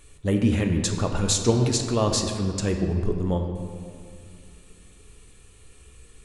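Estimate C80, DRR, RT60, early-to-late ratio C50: 7.0 dB, 4.0 dB, 2.2 s, 6.0 dB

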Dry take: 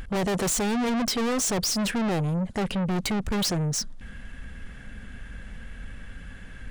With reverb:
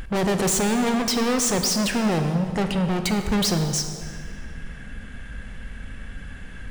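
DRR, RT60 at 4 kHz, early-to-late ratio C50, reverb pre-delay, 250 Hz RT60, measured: 6.0 dB, 1.6 s, 7.0 dB, 24 ms, 2.4 s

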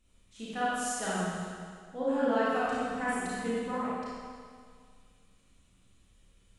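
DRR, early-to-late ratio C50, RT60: -9.5 dB, -6.0 dB, 2.0 s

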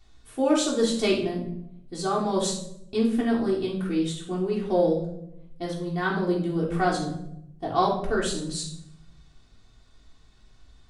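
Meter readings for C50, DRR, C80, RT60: 5.5 dB, -5.0 dB, 9.5 dB, 0.80 s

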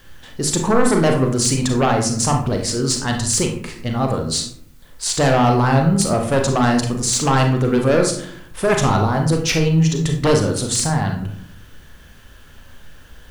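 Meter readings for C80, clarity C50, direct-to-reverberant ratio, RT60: 10.5 dB, 6.5 dB, 2.0 dB, 0.65 s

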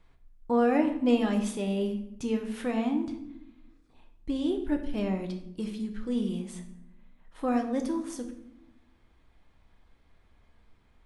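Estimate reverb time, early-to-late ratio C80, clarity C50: 0.80 s, 12.0 dB, 9.5 dB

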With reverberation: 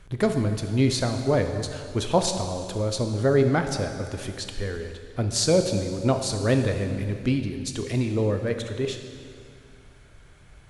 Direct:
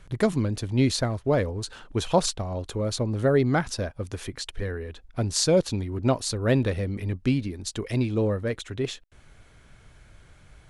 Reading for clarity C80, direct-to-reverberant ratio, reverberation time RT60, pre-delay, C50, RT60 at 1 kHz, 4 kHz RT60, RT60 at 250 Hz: 8.0 dB, 6.0 dB, 2.3 s, 7 ms, 7.0 dB, 2.3 s, 2.2 s, 2.3 s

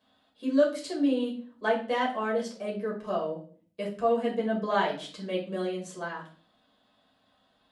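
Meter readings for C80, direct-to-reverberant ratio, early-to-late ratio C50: 13.0 dB, -4.0 dB, 8.5 dB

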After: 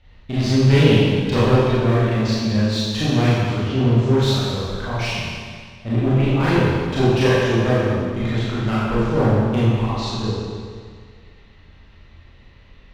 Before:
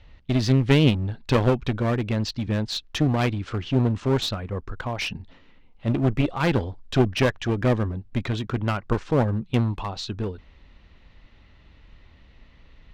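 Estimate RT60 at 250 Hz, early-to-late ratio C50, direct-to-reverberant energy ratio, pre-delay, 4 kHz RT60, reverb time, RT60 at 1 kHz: 1.9 s, -3.5 dB, -10.0 dB, 25 ms, 1.8 s, 1.9 s, 1.9 s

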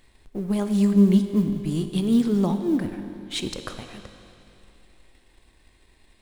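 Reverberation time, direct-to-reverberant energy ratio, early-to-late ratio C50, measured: 2.8 s, 7.5 dB, 8.5 dB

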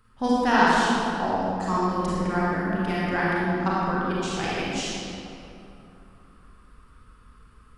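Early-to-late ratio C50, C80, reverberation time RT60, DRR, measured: -5.0 dB, -2.5 dB, 2.8 s, -7.5 dB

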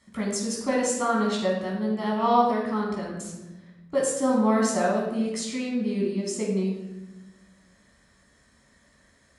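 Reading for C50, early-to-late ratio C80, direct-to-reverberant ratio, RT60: 2.5 dB, 5.5 dB, -3.5 dB, 1.0 s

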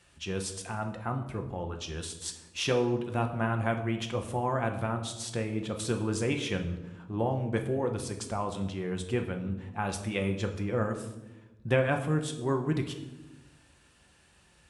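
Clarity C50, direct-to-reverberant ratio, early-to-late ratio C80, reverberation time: 9.5 dB, 4.0 dB, 12.0 dB, 1.0 s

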